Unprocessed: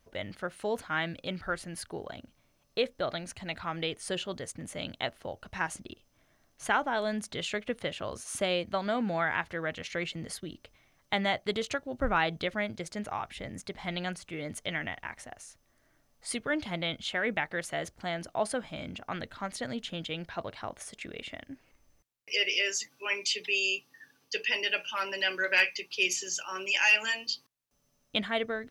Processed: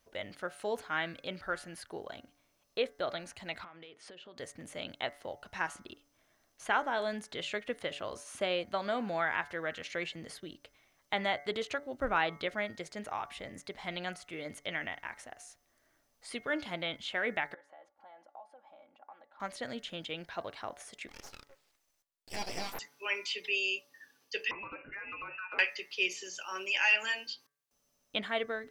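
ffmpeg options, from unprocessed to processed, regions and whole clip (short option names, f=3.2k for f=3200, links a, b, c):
-filter_complex "[0:a]asettb=1/sr,asplit=3[a][b][c];[a]atrim=end=3.644[d];[b]atrim=start=3.64:end=4.38,asetpts=PTS-STARTPTS,afade=t=in:d=0.004:c=qsin,afade=t=out:st=0.736:d=0.004:c=qsin,highpass=130,lowpass=3.5k,acompressor=threshold=-44dB:ratio=16:attack=3.2:release=140:knee=1:detection=peak[e];[c]atrim=start=4.376[f];[d][e]acrossfade=d=0.004:c1=hsin:c2=qsin[g];[g][f]acrossfade=d=0.004:c1=qsin:c2=hsin,asettb=1/sr,asplit=3[h][i][j];[h]atrim=end=17.544[k];[i]atrim=start=17.54:end=19.4,asetpts=PTS-STARTPTS,afade=t=in:d=0.004:c=qsin,afade=t=out:st=1.856:d=0.004:c=qsin,aecho=1:1:3.6:0.63,atrim=end_sample=82026,acompressor=threshold=-39dB:ratio=10:attack=3.2:release=140:knee=1:detection=peak,bandpass=f=810:t=q:w=3.6[l];[j]atrim=start=19.396[m];[k][l]acrossfade=d=0.004:c1=hsin:c2=qsin[n];[n][m]acrossfade=d=0.004:c1=qsin:c2=hsin,asettb=1/sr,asplit=3[o][p][q];[o]atrim=end=21.084[r];[p]atrim=start=21.08:end=22.79,asetpts=PTS-STARTPTS,afade=t=in:d=0.004:c=qsin,afade=t=out:st=1.706:d=0.004:c=qsin,lowshelf=f=460:g=-12,aeval=exprs='abs(val(0))':c=same[s];[q]atrim=start=22.786[t];[r][s]acrossfade=d=0.004:c1=hsin:c2=qsin[u];[u][t]acrossfade=d=0.004:c1=qsin:c2=hsin,asettb=1/sr,asplit=3[v][w][x];[v]atrim=end=24.514[y];[w]atrim=start=24.51:end=25.59,asetpts=PTS-STARTPTS,afade=t=in:d=0.004:c=qsin,afade=t=out:st=1.076:d=0.004:c=qsin,lowpass=f=2.6k:t=q:w=0.5098,lowpass=f=2.6k:t=q:w=0.6013,lowpass=f=2.6k:t=q:w=0.9,lowpass=f=2.6k:t=q:w=2.563,afreqshift=-3000,acompressor=threshold=-37dB:ratio=6:attack=3.2:release=140:knee=1:detection=peak[z];[x]atrim=start=25.586[aa];[y][z]acrossfade=d=0.004:c1=hsin:c2=qsin[ab];[ab][aa]acrossfade=d=0.004:c1=qsin:c2=hsin,bandreject=f=143.6:t=h:w=4,bandreject=f=287.2:t=h:w=4,bandreject=f=430.8:t=h:w=4,bandreject=f=574.4:t=h:w=4,bandreject=f=718:t=h:w=4,bandreject=f=861.6:t=h:w=4,bandreject=f=1.0052k:t=h:w=4,bandreject=f=1.1488k:t=h:w=4,bandreject=f=1.2924k:t=h:w=4,bandreject=f=1.436k:t=h:w=4,bandreject=f=1.5796k:t=h:w=4,bandreject=f=1.7232k:t=h:w=4,bandreject=f=1.8668k:t=h:w=4,bandreject=f=2.0104k:t=h:w=4,bandreject=f=2.154k:t=h:w=4,acrossover=split=3700[ac][ad];[ad]acompressor=threshold=-47dB:ratio=4:attack=1:release=60[ae];[ac][ae]amix=inputs=2:normalize=0,bass=f=250:g=-8,treble=f=4k:g=2,volume=-2dB"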